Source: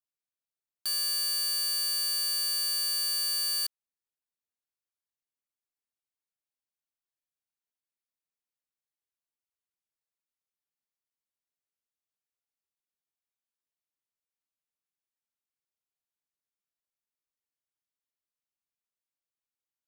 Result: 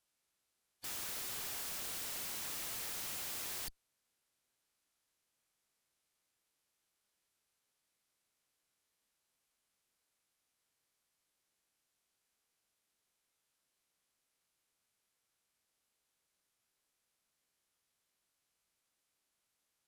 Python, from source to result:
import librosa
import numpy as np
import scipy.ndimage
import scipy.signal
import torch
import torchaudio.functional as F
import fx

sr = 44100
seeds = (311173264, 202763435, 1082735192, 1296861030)

y = fx.clip_asym(x, sr, top_db=-38.5, bottom_db=-30.0)
y = fx.pitch_keep_formants(y, sr, semitones=-10.0)
y = (np.mod(10.0 ** (49.5 / 20.0) * y + 1.0, 2.0) - 1.0) / 10.0 ** (49.5 / 20.0)
y = y * librosa.db_to_amplitude(12.0)